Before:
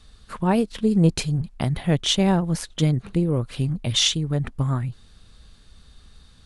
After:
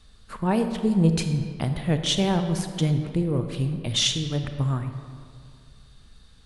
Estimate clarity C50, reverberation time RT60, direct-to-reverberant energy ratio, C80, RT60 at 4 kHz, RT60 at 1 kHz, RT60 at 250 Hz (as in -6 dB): 8.0 dB, 2.1 s, 7.0 dB, 9.0 dB, 1.2 s, 2.1 s, 2.2 s